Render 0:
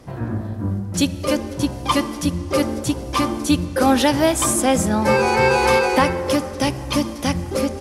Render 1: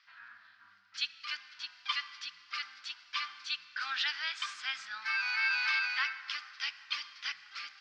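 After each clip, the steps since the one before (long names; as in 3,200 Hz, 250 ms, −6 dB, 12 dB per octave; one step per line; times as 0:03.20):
elliptic band-pass filter 1,400–4,800 Hz, stop band 50 dB
level −7 dB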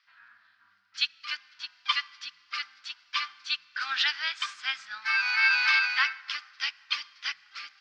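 expander for the loud parts 1.5 to 1, over −52 dBFS
level +8.5 dB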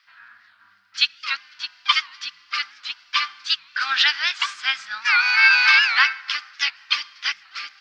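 wow of a warped record 78 rpm, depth 160 cents
level +8.5 dB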